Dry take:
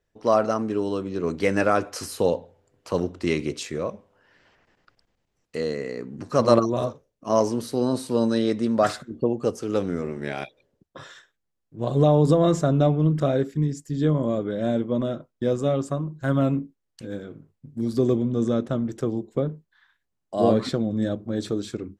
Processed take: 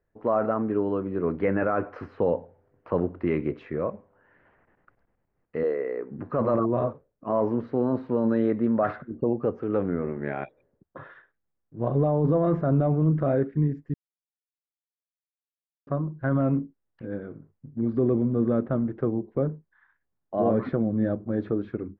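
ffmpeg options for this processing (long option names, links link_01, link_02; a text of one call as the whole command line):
ffmpeg -i in.wav -filter_complex "[0:a]asettb=1/sr,asplit=3[link_01][link_02][link_03];[link_01]atrim=end=5.634[link_04];[link_02]atrim=start=5.63:end=6.11,asetpts=PTS-STARTPTS,afade=type=in:duration=0.004:curve=qsin,afade=type=out:start_time=0.476:duration=0.004:curve=qsin,lowshelf=frequency=270:width_type=q:width=1.5:gain=-12[link_05];[link_03]atrim=start=6.106[link_06];[link_04][link_05]acrossfade=duration=0.004:curve1=hsin:curve2=qsin[link_07];[link_07][link_06]acrossfade=duration=0.004:curve1=qsin:curve2=hsin,asplit=3[link_08][link_09][link_10];[link_08]atrim=end=13.94,asetpts=PTS-STARTPTS,afade=type=out:start_time=13.936:duration=0.004:curve=hsin[link_11];[link_09]atrim=start=13.94:end=15.87,asetpts=PTS-STARTPTS,volume=0[link_12];[link_10]atrim=start=15.87,asetpts=PTS-STARTPTS,afade=type=in:duration=0.004:curve=hsin[link_13];[link_11][link_12][link_13]concat=n=3:v=0:a=1,lowpass=frequency=1900:width=0.5412,lowpass=frequency=1900:width=1.3066,alimiter=limit=-14.5dB:level=0:latency=1:release=14" out.wav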